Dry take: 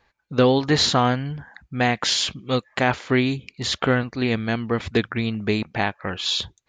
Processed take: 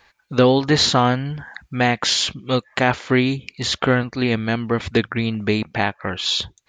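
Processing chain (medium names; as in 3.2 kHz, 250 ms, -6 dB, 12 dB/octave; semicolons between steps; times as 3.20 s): tape noise reduction on one side only encoder only; trim +2.5 dB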